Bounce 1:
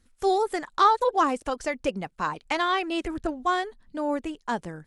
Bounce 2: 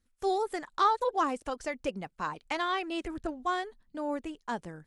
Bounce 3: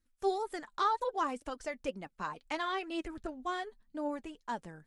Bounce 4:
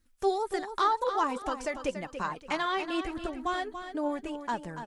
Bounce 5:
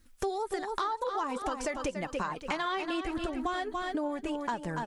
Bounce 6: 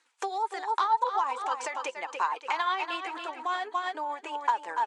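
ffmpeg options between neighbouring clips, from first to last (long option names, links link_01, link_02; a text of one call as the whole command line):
ffmpeg -i in.wav -af "agate=range=-6dB:threshold=-48dB:ratio=16:detection=peak,volume=-6dB" out.wav
ffmpeg -i in.wav -af "flanger=delay=3.1:depth=2:regen=54:speed=2:shape=sinusoidal" out.wav
ffmpeg -i in.wav -filter_complex "[0:a]asplit=2[link_01][link_02];[link_02]acompressor=threshold=-43dB:ratio=6,volume=0dB[link_03];[link_01][link_03]amix=inputs=2:normalize=0,aecho=1:1:285|570|855:0.335|0.1|0.0301,volume=2.5dB" out.wav
ffmpeg -i in.wav -filter_complex "[0:a]asplit=2[link_01][link_02];[link_02]alimiter=level_in=2dB:limit=-24dB:level=0:latency=1:release=125,volume=-2dB,volume=-1dB[link_03];[link_01][link_03]amix=inputs=2:normalize=0,acompressor=threshold=-33dB:ratio=6,volume=3dB" out.wav
ffmpeg -i in.wav -af "tremolo=f=8.5:d=0.4,highpass=frequency=490:width=0.5412,highpass=frequency=490:width=1.3066,equalizer=frequency=600:width_type=q:width=4:gain=-8,equalizer=frequency=920:width_type=q:width=4:gain=9,equalizer=frequency=2400:width_type=q:width=4:gain=3,equalizer=frequency=5300:width_type=q:width=4:gain=-5,lowpass=frequency=7900:width=0.5412,lowpass=frequency=7900:width=1.3066,volume=4dB" out.wav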